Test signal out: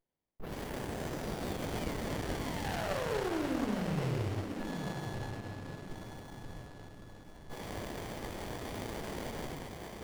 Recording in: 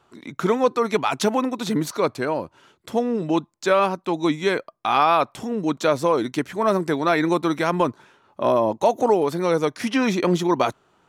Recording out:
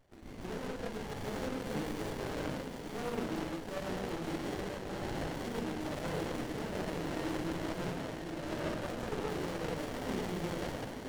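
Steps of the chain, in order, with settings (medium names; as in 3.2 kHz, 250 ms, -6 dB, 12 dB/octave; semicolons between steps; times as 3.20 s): rattle on loud lows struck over -37 dBFS, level -25 dBFS; tilt shelf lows -8 dB; reverse; compression, threshold -27 dBFS; reverse; one-sided clip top -33.5 dBFS; valve stage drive 29 dB, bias 0.75; on a send: echo that smears into a reverb 997 ms, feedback 44%, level -6.5 dB; on the sum: gated-style reverb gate 250 ms flat, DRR 0.5 dB; sliding maximum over 33 samples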